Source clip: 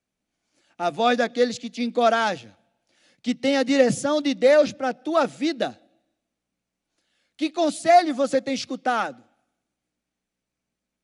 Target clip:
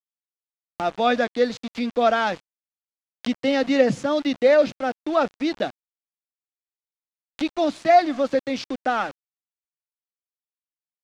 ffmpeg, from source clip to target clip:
ffmpeg -i in.wav -af "aeval=exprs='val(0)*gte(abs(val(0)),0.0211)':channel_layout=same,lowpass=4500,acompressor=mode=upward:threshold=-24dB:ratio=2.5" out.wav

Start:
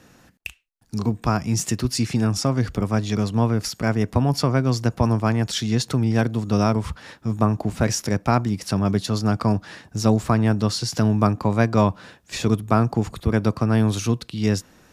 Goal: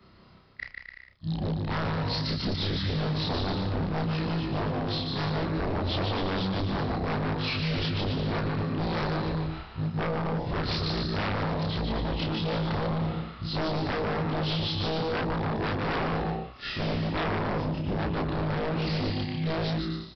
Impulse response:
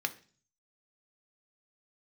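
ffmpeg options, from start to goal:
-af "afftfilt=real='re':imag='-im':win_size=2048:overlap=0.75,aecho=1:1:110|192.5|254.4|300.8|335.6:0.631|0.398|0.251|0.158|0.1,asetrate=32667,aresample=44100,aresample=11025,aeval=exprs='0.0668*(abs(mod(val(0)/0.0668+3,4)-2)-1)':channel_layout=same,aresample=44100"

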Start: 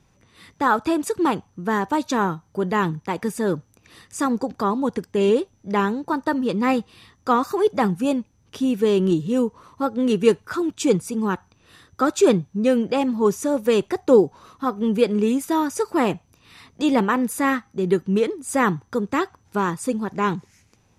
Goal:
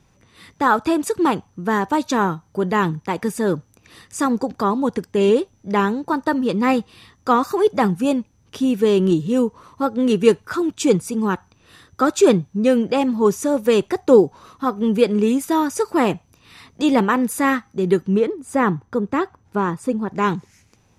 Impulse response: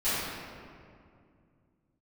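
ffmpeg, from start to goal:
-filter_complex "[0:a]asettb=1/sr,asplit=3[link_01][link_02][link_03];[link_01]atrim=end=18.164[link_04];[link_02]atrim=start=18.16:end=20.16,asetpts=PTS-STARTPTS,afade=type=in:duration=0.004:curve=qsin,afade=type=out:start_time=1.996:duration=0.004:curve=qsin,highshelf=frequency=2500:gain=-11[link_05];[link_03]atrim=start=20.156[link_06];[link_04][link_05]acrossfade=duration=0.004:curve1=hsin:curve2=qsin[link_07];[link_07][link_06]acrossfade=duration=0.004:curve1=qsin:curve2=hsin,volume=2.5dB"

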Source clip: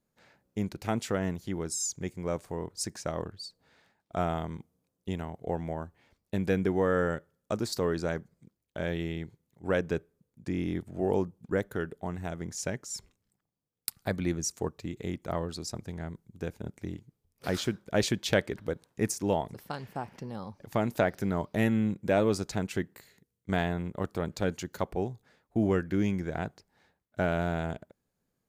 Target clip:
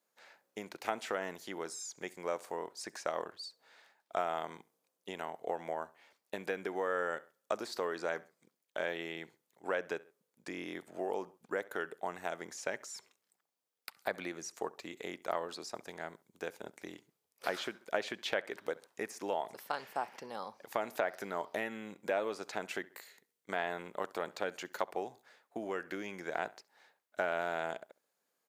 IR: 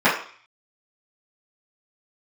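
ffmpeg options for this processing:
-filter_complex "[0:a]acrossover=split=3000[link_01][link_02];[link_02]acompressor=threshold=-49dB:ratio=4:attack=1:release=60[link_03];[link_01][link_03]amix=inputs=2:normalize=0,asplit=2[link_04][link_05];[link_05]adelay=67,lowpass=frequency=4400:poles=1,volume=-22dB,asplit=2[link_06][link_07];[link_07]adelay=67,lowpass=frequency=4400:poles=1,volume=0.34[link_08];[link_04][link_06][link_08]amix=inputs=3:normalize=0,acompressor=threshold=-29dB:ratio=6,highpass=580,volume=3.5dB"

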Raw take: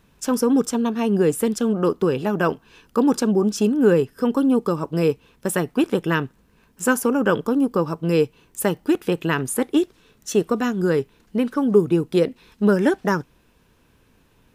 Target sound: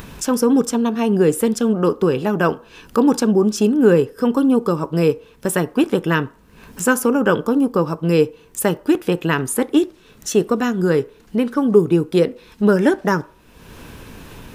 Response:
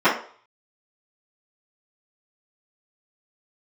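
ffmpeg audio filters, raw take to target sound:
-filter_complex "[0:a]acompressor=mode=upward:threshold=-25dB:ratio=2.5,asplit=2[link_01][link_02];[1:a]atrim=start_sample=2205,adelay=7[link_03];[link_02][link_03]afir=irnorm=-1:irlink=0,volume=-38dB[link_04];[link_01][link_04]amix=inputs=2:normalize=0,volume=3dB"

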